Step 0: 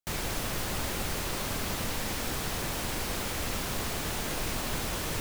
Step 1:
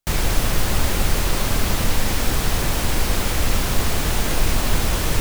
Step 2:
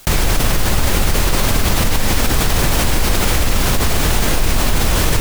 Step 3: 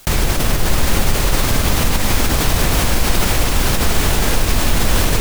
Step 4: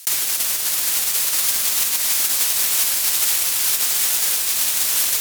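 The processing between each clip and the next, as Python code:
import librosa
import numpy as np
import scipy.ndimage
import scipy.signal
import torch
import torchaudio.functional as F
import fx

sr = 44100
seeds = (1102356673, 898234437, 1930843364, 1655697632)

y1 = fx.low_shelf(x, sr, hz=72.0, db=12.0)
y1 = y1 * 10.0 ** (9.0 / 20.0)
y2 = fx.env_flatten(y1, sr, amount_pct=70)
y3 = fx.echo_split(y2, sr, split_hz=660.0, low_ms=92, high_ms=665, feedback_pct=52, wet_db=-6.0)
y3 = y3 * 10.0 ** (-1.5 / 20.0)
y4 = np.repeat(y3[::2], 2)[:len(y3)]
y4 = np.diff(y4, prepend=0.0)
y4 = y4 * 10.0 ** (4.0 / 20.0)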